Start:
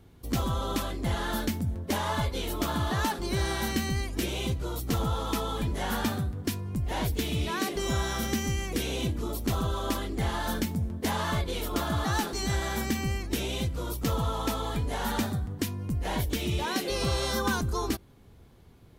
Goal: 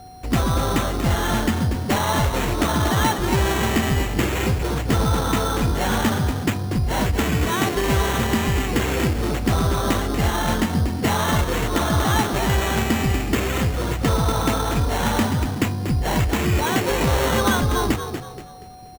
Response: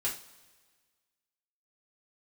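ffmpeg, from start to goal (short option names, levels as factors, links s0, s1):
-filter_complex "[0:a]asplit=5[s0][s1][s2][s3][s4];[s1]adelay=238,afreqshift=38,volume=0.376[s5];[s2]adelay=476,afreqshift=76,volume=0.132[s6];[s3]adelay=714,afreqshift=114,volume=0.0462[s7];[s4]adelay=952,afreqshift=152,volume=0.016[s8];[s0][s5][s6][s7][s8]amix=inputs=5:normalize=0,aeval=exprs='val(0)+0.00355*sin(2*PI*740*n/s)':c=same,acrusher=samples=9:mix=1:aa=0.000001,volume=2.66"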